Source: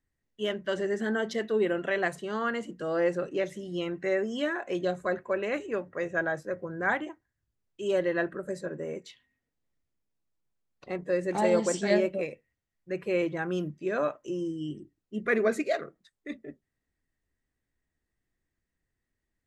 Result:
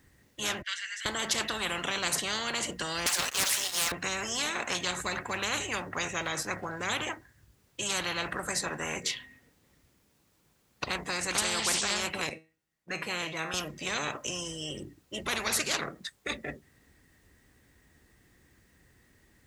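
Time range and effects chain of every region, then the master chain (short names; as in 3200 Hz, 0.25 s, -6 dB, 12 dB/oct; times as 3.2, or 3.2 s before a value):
0.62–1.06 steep high-pass 1900 Hz + tilt -4.5 dB/oct
3.06–3.92 steep high-pass 950 Hz + sample leveller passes 3
12.29–13.54 gate -53 dBFS, range -9 dB + bell 76 Hz -14.5 dB 0.54 oct + resonator 160 Hz, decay 0.31 s, mix 70%
whole clip: HPF 51 Hz; notch 660 Hz, Q 17; spectral compressor 10:1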